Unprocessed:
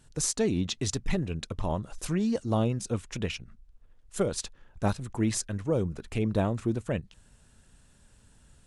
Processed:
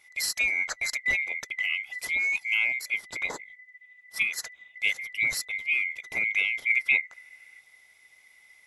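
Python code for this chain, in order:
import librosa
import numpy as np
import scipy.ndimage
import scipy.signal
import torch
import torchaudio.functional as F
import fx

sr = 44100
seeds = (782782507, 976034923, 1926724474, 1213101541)

y = fx.band_swap(x, sr, width_hz=2000)
y = fx.spec_box(y, sr, start_s=6.7, length_s=0.89, low_hz=1300.0, high_hz=2900.0, gain_db=7)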